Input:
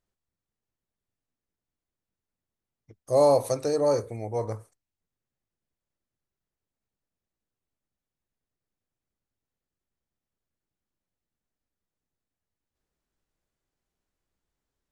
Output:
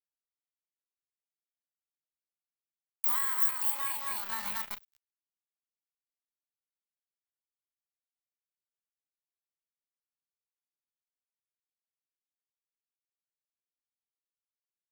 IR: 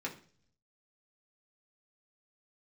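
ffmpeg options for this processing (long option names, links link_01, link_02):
-filter_complex "[0:a]aecho=1:1:231|462|693:0.562|0.135|0.0324,acrossover=split=1300[link_01][link_02];[link_01]asoftclip=type=tanh:threshold=-21.5dB[link_03];[link_02]dynaudnorm=framelen=240:gausssize=11:maxgain=14.5dB[link_04];[link_03][link_04]amix=inputs=2:normalize=0,acrusher=bits=4:mix=0:aa=0.5,equalizer=frequency=150:width=0.35:gain=-13,acompressor=threshold=-34dB:ratio=12,aexciter=amount=8.7:drive=9.8:freq=10000,asetrate=83250,aresample=44100,atempo=0.529732"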